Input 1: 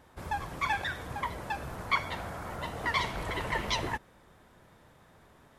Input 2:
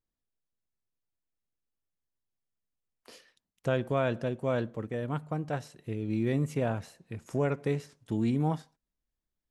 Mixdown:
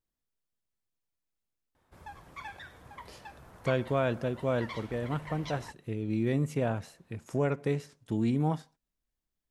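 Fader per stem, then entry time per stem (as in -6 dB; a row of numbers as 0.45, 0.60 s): -13.0, 0.0 dB; 1.75, 0.00 s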